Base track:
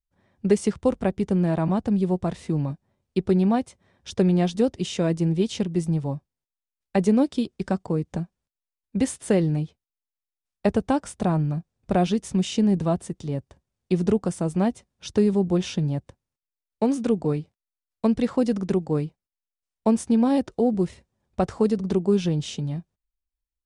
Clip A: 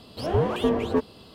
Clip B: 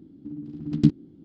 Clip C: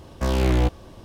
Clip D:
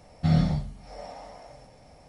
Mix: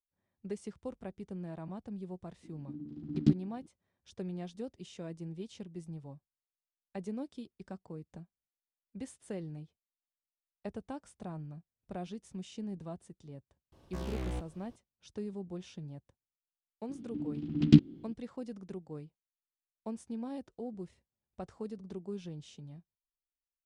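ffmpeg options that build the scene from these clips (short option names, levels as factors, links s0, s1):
-filter_complex "[2:a]asplit=2[s0][s1];[0:a]volume=0.1[s2];[s1]equalizer=f=2800:t=o:w=1.1:g=9.5[s3];[s0]atrim=end=1.24,asetpts=PTS-STARTPTS,volume=0.422,afade=t=in:d=0.004:c=hsin,afade=t=out:st=1.236:d=0.004:c=hsin,adelay=2430[s4];[3:a]atrim=end=1.04,asetpts=PTS-STARTPTS,volume=0.133,afade=t=in:d=0.004:c=hsin,afade=t=out:st=1.036:d=0.004:c=hsin,adelay=13720[s5];[s3]atrim=end=1.24,asetpts=PTS-STARTPTS,volume=0.891,afade=t=in:d=0.004:c=hsin,afade=t=out:st=1.236:d=0.004:c=hsin,adelay=16890[s6];[s2][s4][s5][s6]amix=inputs=4:normalize=0"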